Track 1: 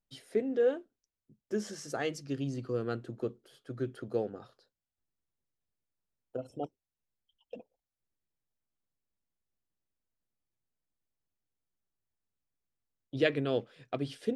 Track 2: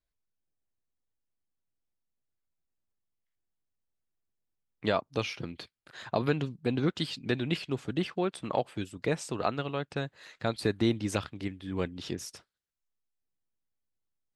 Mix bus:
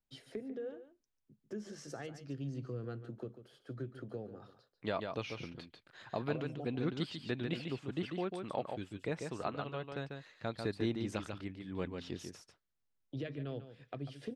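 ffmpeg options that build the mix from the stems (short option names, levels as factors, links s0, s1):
-filter_complex "[0:a]acrossover=split=160[s0][s1];[s1]acompressor=threshold=0.00794:ratio=4[s2];[s0][s2]amix=inputs=2:normalize=0,volume=0.841,asplit=2[s3][s4];[s4]volume=0.251[s5];[1:a]dynaudnorm=f=120:g=7:m=4.47,volume=0.106,asplit=2[s6][s7];[s7]volume=0.531[s8];[s5][s8]amix=inputs=2:normalize=0,aecho=0:1:144:1[s9];[s3][s6][s9]amix=inputs=3:normalize=0,highshelf=f=7700:g=-11.5"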